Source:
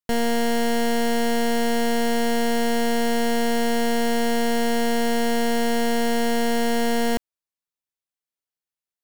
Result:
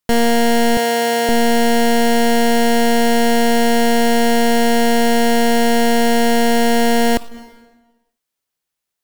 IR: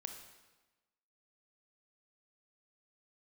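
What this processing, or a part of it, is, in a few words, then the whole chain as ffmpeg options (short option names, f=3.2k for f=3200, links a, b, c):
saturated reverb return: -filter_complex "[0:a]asplit=2[a][b];[1:a]atrim=start_sample=2205[c];[b][c]afir=irnorm=-1:irlink=0,asoftclip=type=tanh:threshold=-36dB,volume=1.5dB[d];[a][d]amix=inputs=2:normalize=0,asettb=1/sr,asplit=3[e][f][g];[e]atrim=end=0.774[h];[f]atrim=start=0.77:end=1.29,asetpts=PTS-STARTPTS,afade=t=in:d=0.004:c=qsin,afade=t=out:st=0.516:d=0.004:c=qsin,highpass=f=290:w=0.5412,highpass=f=290:w=1.3066[i];[g]atrim=start=1.286[j];[h][i]acrossfade=d=0.004:c1=hsin:c2=qsin[k];[k][j]acrossfade=d=0.004:c1=qsin:c2=hsin,volume=6.5dB"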